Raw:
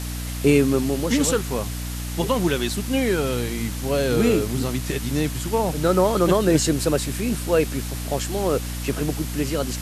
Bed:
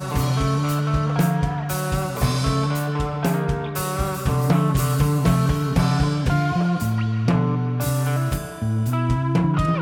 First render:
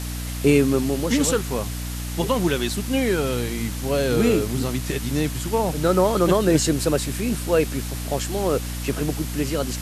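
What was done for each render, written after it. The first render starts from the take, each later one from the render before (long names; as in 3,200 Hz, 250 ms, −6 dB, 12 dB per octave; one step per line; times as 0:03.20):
no processing that can be heard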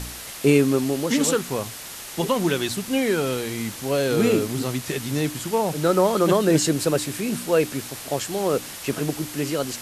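hum removal 60 Hz, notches 5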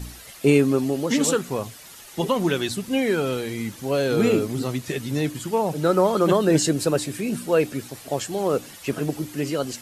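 broadband denoise 10 dB, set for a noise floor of −37 dBFS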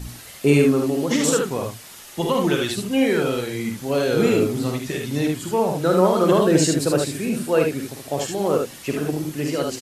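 ambience of single reflections 49 ms −6.5 dB, 75 ms −4 dB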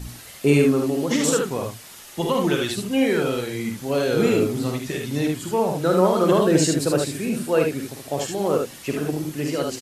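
level −1 dB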